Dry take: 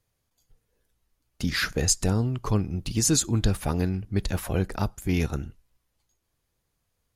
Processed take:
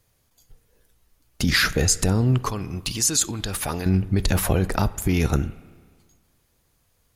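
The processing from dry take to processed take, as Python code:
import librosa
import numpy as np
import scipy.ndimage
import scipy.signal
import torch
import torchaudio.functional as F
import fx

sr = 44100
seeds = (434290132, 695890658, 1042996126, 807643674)

p1 = fx.high_shelf(x, sr, hz=10000.0, db=4.0)
p2 = fx.over_compress(p1, sr, threshold_db=-27.0, ratio=-0.5)
p3 = p1 + (p2 * librosa.db_to_amplitude(2.5))
p4 = fx.low_shelf(p3, sr, hz=480.0, db=-11.5, at=(2.43, 3.86))
y = fx.rev_spring(p4, sr, rt60_s=1.7, pass_ms=(32, 47), chirp_ms=30, drr_db=17.5)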